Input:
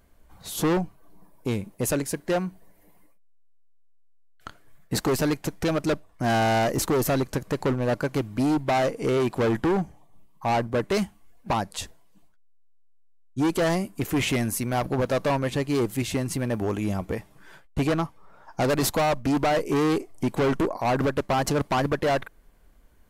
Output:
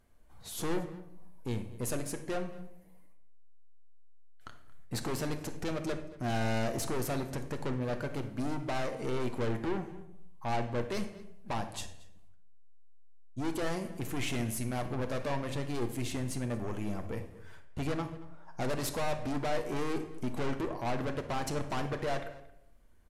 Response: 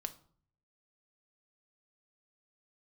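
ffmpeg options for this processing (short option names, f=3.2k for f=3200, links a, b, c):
-filter_complex "[0:a]aeval=exprs='(tanh(15.8*val(0)+0.3)-tanh(0.3))/15.8':c=same,asplit=2[a][b];[b]adelay=227.4,volume=-19dB,highshelf=f=4k:g=-5.12[c];[a][c]amix=inputs=2:normalize=0[d];[1:a]atrim=start_sample=2205,afade=t=out:st=0.36:d=0.01,atrim=end_sample=16317,asetrate=23814,aresample=44100[e];[d][e]afir=irnorm=-1:irlink=0,volume=-8dB"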